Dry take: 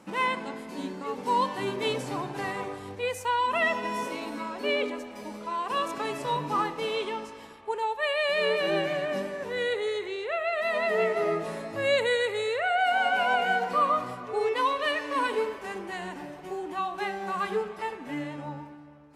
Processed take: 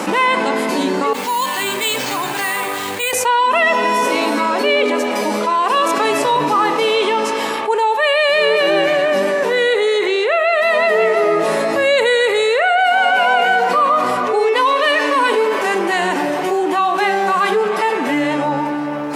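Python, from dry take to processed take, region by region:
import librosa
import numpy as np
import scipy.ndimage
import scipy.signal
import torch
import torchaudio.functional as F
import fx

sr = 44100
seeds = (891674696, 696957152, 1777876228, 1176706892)

y = fx.chain(x, sr, fx.tone_stack(knobs='5-5-5'),
    fx.resample_bad(factor=4, down='filtered', up='hold'), at=(1.13, 3.13))
y = scipy.signal.sosfilt(scipy.signal.butter(2, 280.0, 'highpass', fs=sr, output='sos'), y)
y = fx.env_flatten(y, sr, amount_pct=70)
y = F.gain(torch.from_numpy(y), 8.5).numpy()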